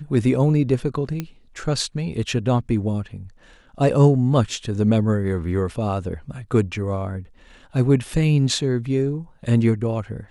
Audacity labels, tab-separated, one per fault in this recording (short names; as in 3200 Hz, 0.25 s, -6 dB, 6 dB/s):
1.200000	1.200000	pop -13 dBFS